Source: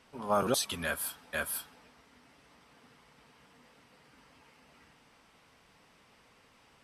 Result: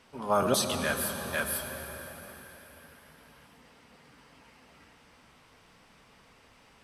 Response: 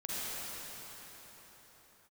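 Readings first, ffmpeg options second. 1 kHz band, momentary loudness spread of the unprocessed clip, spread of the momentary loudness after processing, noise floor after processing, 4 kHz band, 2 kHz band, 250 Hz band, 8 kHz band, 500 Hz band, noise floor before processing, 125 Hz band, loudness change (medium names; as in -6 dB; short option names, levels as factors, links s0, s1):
+3.5 dB, 8 LU, 20 LU, -60 dBFS, +3.5 dB, +3.5 dB, +4.5 dB, +3.5 dB, +4.0 dB, -64 dBFS, +5.5 dB, +2.5 dB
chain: -filter_complex "[0:a]asplit=2[s0][s1];[1:a]atrim=start_sample=2205,lowshelf=f=110:g=11.5,adelay=31[s2];[s1][s2]afir=irnorm=-1:irlink=0,volume=0.282[s3];[s0][s3]amix=inputs=2:normalize=0,volume=1.33"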